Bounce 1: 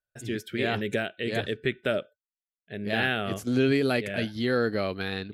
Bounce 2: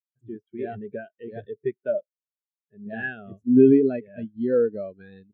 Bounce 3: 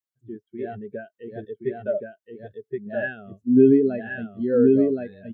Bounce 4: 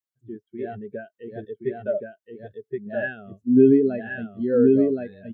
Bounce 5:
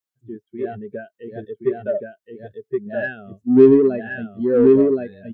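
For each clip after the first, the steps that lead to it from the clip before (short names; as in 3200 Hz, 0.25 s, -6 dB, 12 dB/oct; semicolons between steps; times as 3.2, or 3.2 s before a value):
spectral expander 2.5:1; gain +7.5 dB
notch 2400 Hz, Q 12; echo 1.072 s -3 dB
nothing audible
dynamic EQ 380 Hz, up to +6 dB, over -32 dBFS, Q 3.3; in parallel at -8 dB: soft clip -19 dBFS, distortion -5 dB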